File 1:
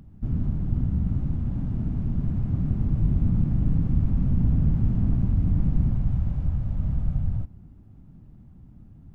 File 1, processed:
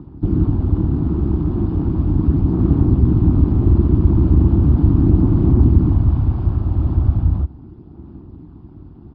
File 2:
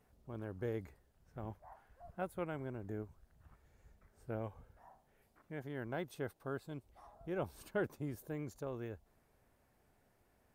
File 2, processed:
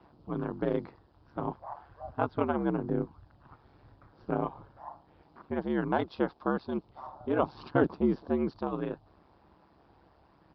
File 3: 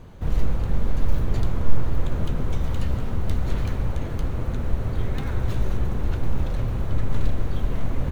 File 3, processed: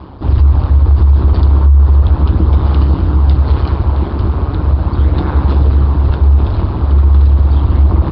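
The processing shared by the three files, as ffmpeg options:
-filter_complex "[0:a]aresample=11025,aresample=44100,equalizer=f=125:t=o:w=1:g=-12,equalizer=f=250:t=o:w=1:g=9,equalizer=f=500:t=o:w=1:g=-6,equalizer=f=1000:t=o:w=1:g=8,equalizer=f=2000:t=o:w=1:g=-9,aphaser=in_gain=1:out_gain=1:delay=3.3:decay=0.24:speed=0.37:type=sinusoidal,equalizer=f=67:t=o:w=1.4:g=-8,asplit=2[s0][s1];[s1]asoftclip=type=tanh:threshold=0.126,volume=0.335[s2];[s0][s2]amix=inputs=2:normalize=0,aeval=exprs='val(0)*sin(2*PI*70*n/s)':c=same,highpass=40,alimiter=level_in=4.47:limit=0.891:release=50:level=0:latency=1,volume=0.891"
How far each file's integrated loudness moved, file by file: +9.5 LU, +12.0 LU, +16.5 LU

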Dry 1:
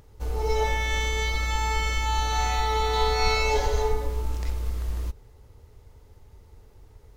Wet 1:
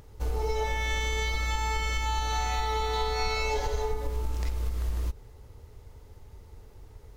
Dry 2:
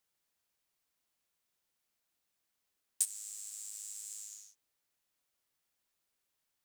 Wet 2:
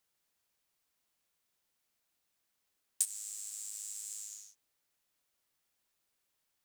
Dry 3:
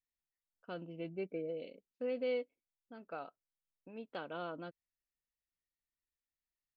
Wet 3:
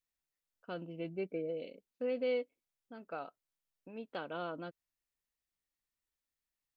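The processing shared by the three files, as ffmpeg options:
-af "acompressor=threshold=0.0447:ratio=6,volume=1.26"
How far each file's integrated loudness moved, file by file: -4.0 LU, +1.0 LU, +2.0 LU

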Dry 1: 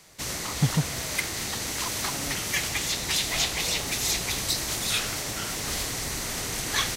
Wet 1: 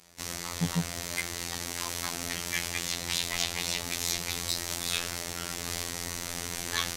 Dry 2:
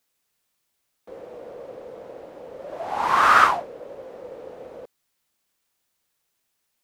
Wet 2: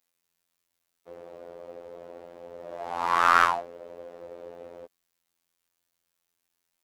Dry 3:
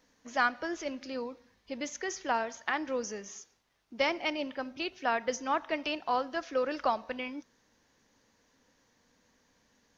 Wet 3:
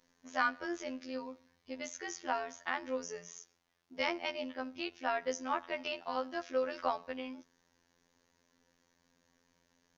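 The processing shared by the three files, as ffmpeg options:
-af "aeval=exprs='0.841*(cos(1*acos(clip(val(0)/0.841,-1,1)))-cos(1*PI/2))+0.0299*(cos(2*acos(clip(val(0)/0.841,-1,1)))-cos(2*PI/2))+0.00596*(cos(5*acos(clip(val(0)/0.841,-1,1)))-cos(5*PI/2))':c=same,afftfilt=real='hypot(re,im)*cos(PI*b)':imag='0':win_size=2048:overlap=0.75,volume=0.841"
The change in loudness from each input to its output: -4.5 LU, -5.0 LU, -4.5 LU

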